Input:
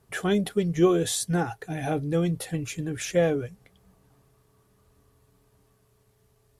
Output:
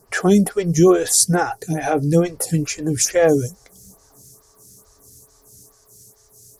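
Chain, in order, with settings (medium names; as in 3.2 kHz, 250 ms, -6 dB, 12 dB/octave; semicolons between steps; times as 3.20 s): resonant high shelf 4.2 kHz +6 dB, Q 3, from 3.29 s +14 dB; loudness maximiser +12.5 dB; lamp-driven phase shifter 2.3 Hz; trim -1 dB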